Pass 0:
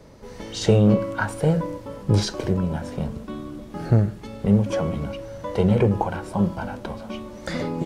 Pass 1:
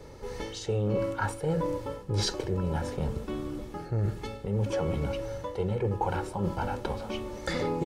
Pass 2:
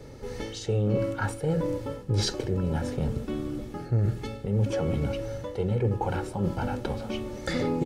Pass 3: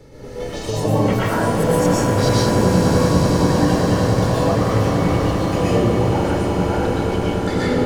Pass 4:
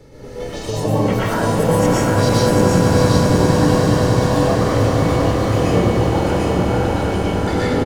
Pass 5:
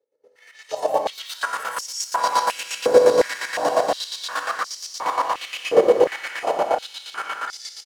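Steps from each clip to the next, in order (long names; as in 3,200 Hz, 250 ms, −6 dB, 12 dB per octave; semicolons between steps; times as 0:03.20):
comb filter 2.3 ms, depth 49%; reversed playback; downward compressor 12 to 1, threshold −25 dBFS, peak gain reduction 16 dB; reversed playback
thirty-one-band graphic EQ 125 Hz +7 dB, 250 Hz +7 dB, 1,000 Hz −7 dB; level +1 dB
delay with pitch and tempo change per echo 244 ms, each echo +6 semitones, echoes 2; echo that builds up and dies away 97 ms, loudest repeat 8, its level −11 dB; convolution reverb RT60 0.75 s, pre-delay 108 ms, DRR −6.5 dB
single-tap delay 746 ms −3.5 dB
downward expander −19 dBFS; square-wave tremolo 8.5 Hz, depth 60%, duty 35%; high-pass on a step sequencer 2.8 Hz 480–5,300 Hz; level −2.5 dB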